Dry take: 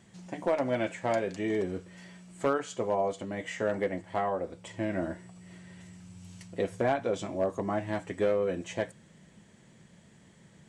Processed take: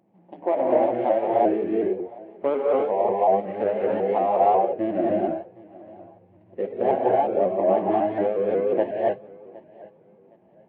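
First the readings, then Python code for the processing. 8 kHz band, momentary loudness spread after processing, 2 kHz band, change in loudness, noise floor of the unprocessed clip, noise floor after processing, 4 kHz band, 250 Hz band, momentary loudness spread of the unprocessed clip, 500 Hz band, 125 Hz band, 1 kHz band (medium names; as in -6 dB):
under -30 dB, 9 LU, -2.5 dB, +9.0 dB, -58 dBFS, -56 dBFS, no reading, +7.0 dB, 21 LU, +9.5 dB, -1.5 dB, +12.0 dB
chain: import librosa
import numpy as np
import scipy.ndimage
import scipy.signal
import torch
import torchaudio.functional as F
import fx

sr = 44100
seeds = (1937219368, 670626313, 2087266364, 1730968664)

y = scipy.signal.medfilt(x, 25)
y = fx.rider(y, sr, range_db=4, speed_s=0.5)
y = fx.rev_gated(y, sr, seeds[0], gate_ms=320, shape='rising', drr_db=-3.5)
y = fx.noise_reduce_blind(y, sr, reduce_db=8)
y = fx.cabinet(y, sr, low_hz=200.0, low_slope=12, high_hz=2500.0, hz=(340.0, 570.0, 800.0, 1400.0), db=(7, 6, 10, -8))
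y = fx.echo_feedback(y, sr, ms=764, feedback_pct=28, wet_db=-22.0)
y = fx.vibrato_shape(y, sr, shape='saw_up', rate_hz=5.5, depth_cents=100.0)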